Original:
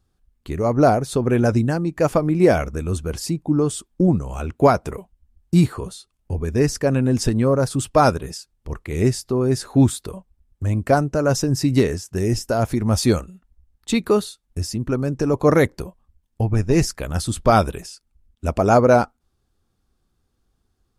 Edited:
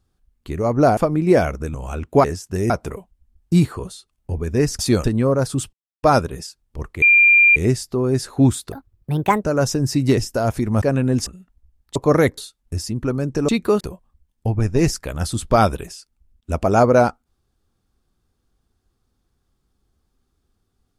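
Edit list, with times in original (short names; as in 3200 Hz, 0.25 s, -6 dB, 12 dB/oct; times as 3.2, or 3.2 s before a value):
0.97–2.1 cut
2.87–4.21 cut
6.8–7.25 swap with 12.96–13.21
7.94 insert silence 0.30 s
8.93 add tone 2390 Hz -8.5 dBFS 0.54 s
10.09–11.12 speed 144%
11.86–12.32 move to 4.71
13.9–14.22 swap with 15.33–15.75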